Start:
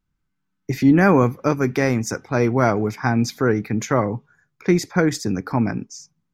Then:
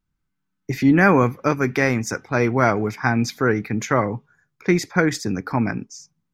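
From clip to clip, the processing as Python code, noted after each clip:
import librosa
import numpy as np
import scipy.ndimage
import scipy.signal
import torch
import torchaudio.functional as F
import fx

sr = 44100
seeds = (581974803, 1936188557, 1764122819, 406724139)

y = fx.dynamic_eq(x, sr, hz=2000.0, q=0.77, threshold_db=-37.0, ratio=4.0, max_db=6)
y = y * librosa.db_to_amplitude(-1.5)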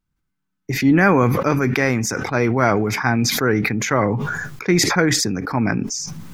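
y = fx.sustainer(x, sr, db_per_s=26.0)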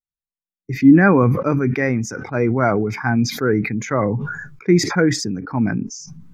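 y = fx.spectral_expand(x, sr, expansion=1.5)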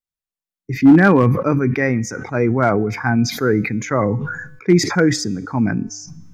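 y = fx.comb_fb(x, sr, f0_hz=100.0, decay_s=1.1, harmonics='odd', damping=0.0, mix_pct=40)
y = np.clip(y, -10.0 ** (-9.5 / 20.0), 10.0 ** (-9.5 / 20.0))
y = y * librosa.db_to_amplitude(5.5)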